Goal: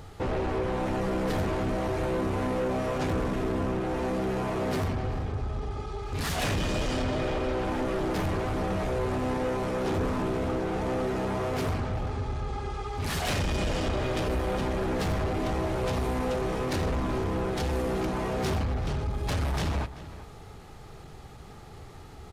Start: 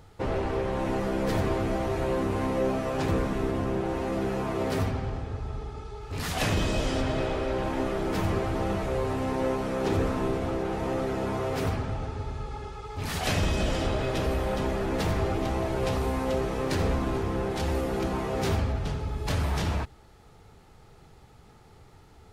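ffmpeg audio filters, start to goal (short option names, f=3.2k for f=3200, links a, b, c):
-filter_complex "[0:a]asplit=2[a][b];[b]acompressor=threshold=-39dB:ratio=6,volume=2.5dB[c];[a][c]amix=inputs=2:normalize=0,asoftclip=type=tanh:threshold=-23.5dB,asetrate=42845,aresample=44100,atempo=1.0293,asplit=2[d][e];[e]adelay=384.8,volume=-14dB,highshelf=f=4k:g=-8.66[f];[d][f]amix=inputs=2:normalize=0"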